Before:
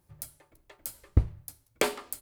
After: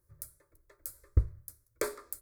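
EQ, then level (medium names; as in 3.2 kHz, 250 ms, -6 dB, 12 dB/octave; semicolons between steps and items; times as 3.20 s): bass shelf 220 Hz +5 dB; treble shelf 8.1 kHz +3.5 dB; static phaser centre 790 Hz, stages 6; -5.5 dB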